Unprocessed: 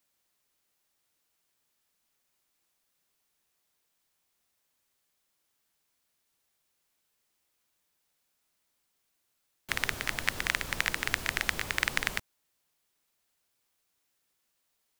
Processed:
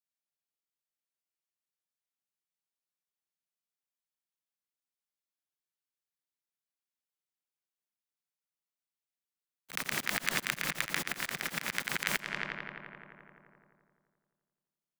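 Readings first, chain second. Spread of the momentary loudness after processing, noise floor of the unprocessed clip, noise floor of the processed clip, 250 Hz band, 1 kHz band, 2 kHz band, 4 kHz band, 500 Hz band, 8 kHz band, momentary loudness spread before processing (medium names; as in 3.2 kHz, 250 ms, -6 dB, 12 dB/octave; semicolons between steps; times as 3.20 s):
11 LU, -78 dBFS, under -85 dBFS, +1.0 dB, -1.5 dB, -3.0 dB, -2.5 dB, -1.0 dB, 0.0 dB, 3 LU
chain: block-companded coder 3-bit; gate -40 dBFS, range -44 dB; tilt shelf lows -3.5 dB, about 710 Hz; in parallel at +0.5 dB: compressor with a negative ratio -32 dBFS; on the sum: resonant low shelf 110 Hz -13 dB, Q 3; on a send: filtered feedback delay 86 ms, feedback 76%, low-pass 4 kHz, level -6 dB; on the sum: slow attack 251 ms; three bands compressed up and down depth 40%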